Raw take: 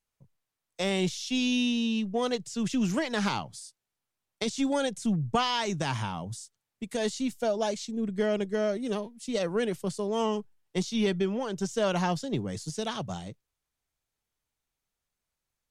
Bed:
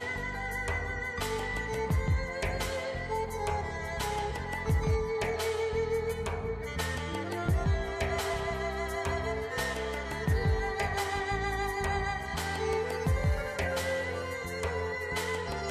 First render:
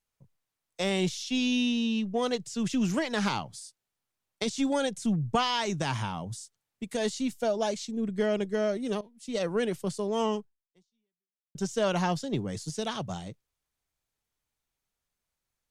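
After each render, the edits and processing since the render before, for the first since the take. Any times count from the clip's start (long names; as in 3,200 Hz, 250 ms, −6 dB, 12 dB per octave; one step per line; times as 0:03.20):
0:01.23–0:02.09: high-shelf EQ 8,800 Hz −6 dB
0:09.01–0:09.45: fade in, from −16 dB
0:10.35–0:11.55: fade out exponential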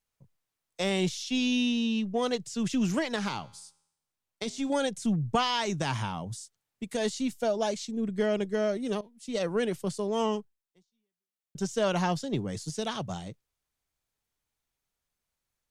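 0:03.16–0:04.70: tuned comb filter 82 Hz, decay 0.79 s, mix 40%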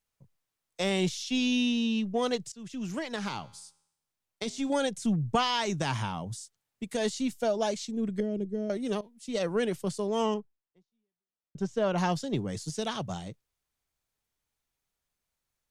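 0:02.52–0:03.53: fade in, from −19.5 dB
0:08.20–0:08.70: drawn EQ curve 330 Hz 0 dB, 1,200 Hz −23 dB, 6,000 Hz −16 dB
0:10.34–0:11.98: low-pass filter 1,500 Hz 6 dB per octave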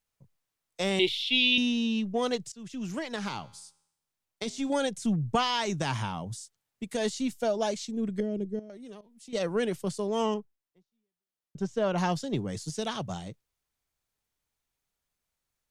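0:00.99–0:01.58: drawn EQ curve 110 Hz 0 dB, 160 Hz −18 dB, 380 Hz +6 dB, 630 Hz −9 dB, 970 Hz 0 dB, 1,400 Hz −30 dB, 2,000 Hz +8 dB, 3,600 Hz +12 dB, 6,300 Hz −14 dB, 12,000 Hz 0 dB
0:08.59–0:09.33: downward compressor 2.5 to 1, threshold −49 dBFS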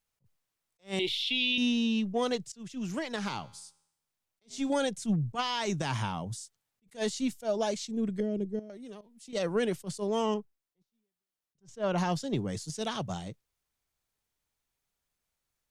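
brickwall limiter −19 dBFS, peak gain reduction 7.5 dB
level that may rise only so fast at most 300 dB per second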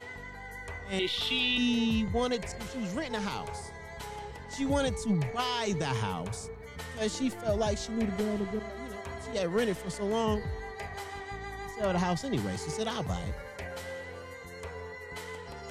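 mix in bed −8.5 dB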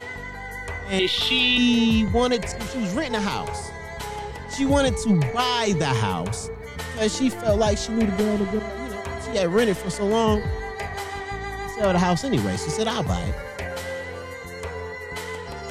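level +9 dB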